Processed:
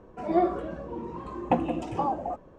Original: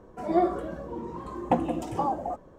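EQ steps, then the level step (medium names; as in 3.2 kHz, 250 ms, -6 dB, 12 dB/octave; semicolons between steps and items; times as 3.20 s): distance through air 70 m; peaking EQ 2.6 kHz +6.5 dB 0.28 oct; 0.0 dB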